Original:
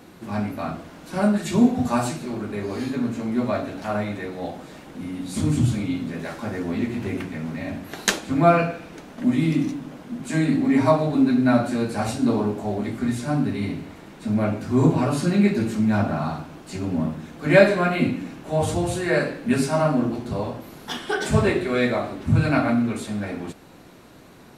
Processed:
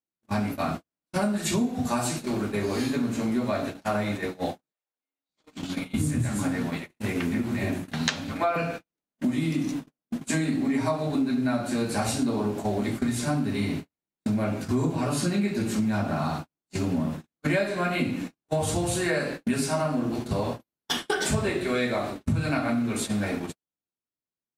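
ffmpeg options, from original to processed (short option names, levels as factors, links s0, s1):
-filter_complex "[0:a]asettb=1/sr,asplit=3[s0][s1][s2];[s0]atrim=end=4.724[s3];[s1]atrim=start=4.72:end=8.56,asetpts=PTS-STARTPTS,afade=t=in:d=0.004:c=qsin,afade=t=out:st=3.836:d=0.004:c=qsin,acrossover=split=430|5700[s4][s5][s6];[s4]adelay=570[s7];[s6]adelay=700[s8];[s7][s5][s8]amix=inputs=3:normalize=0,atrim=end_sample=169344[s9];[s2]atrim=start=8.556[s10];[s3][s9]acrossfade=d=0.004:c1=hsin:c2=qsin[s11];[s11][s10]acrossfade=d=0.004:c1=qsin:c2=hsin,highshelf=f=3500:g=7.5,agate=range=0.00141:threshold=0.0316:ratio=16:detection=peak,acompressor=threshold=0.0501:ratio=6,volume=1.41"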